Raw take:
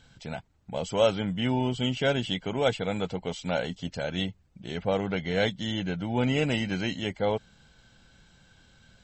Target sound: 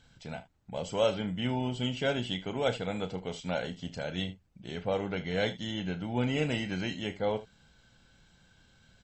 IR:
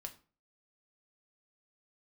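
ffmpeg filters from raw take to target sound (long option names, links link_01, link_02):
-af "aecho=1:1:33|75:0.282|0.15,volume=-4.5dB"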